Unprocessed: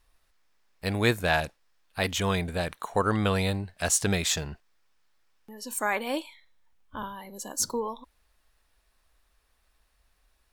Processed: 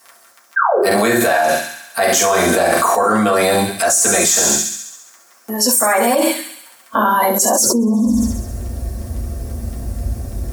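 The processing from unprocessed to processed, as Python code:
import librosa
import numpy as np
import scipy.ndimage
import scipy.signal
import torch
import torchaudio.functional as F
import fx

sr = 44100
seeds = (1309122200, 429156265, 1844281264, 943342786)

y = fx.low_shelf(x, sr, hz=470.0, db=10.0)
y = fx.rider(y, sr, range_db=5, speed_s=0.5)
y = fx.band_shelf(y, sr, hz=1900.0, db=-15.0, octaves=2.6)
y = fx.dmg_crackle(y, sr, seeds[0], per_s=12.0, level_db=-57.0)
y = fx.filter_sweep_highpass(y, sr, from_hz=1200.0, to_hz=75.0, start_s=7.45, end_s=8.06, q=1.8)
y = fx.spec_paint(y, sr, seeds[1], shape='fall', start_s=0.56, length_s=0.22, low_hz=370.0, high_hz=1700.0, level_db=-31.0)
y = fx.doubler(y, sr, ms=44.0, db=-4.5, at=(0.86, 3.02))
y = fx.echo_wet_highpass(y, sr, ms=68, feedback_pct=64, hz=3100.0, wet_db=-7.0)
y = fx.rev_fdn(y, sr, rt60_s=0.35, lf_ratio=1.5, hf_ratio=0.35, size_ms=26.0, drr_db=-6.0)
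y = fx.env_flatten(y, sr, amount_pct=100)
y = y * librosa.db_to_amplitude(-11.0)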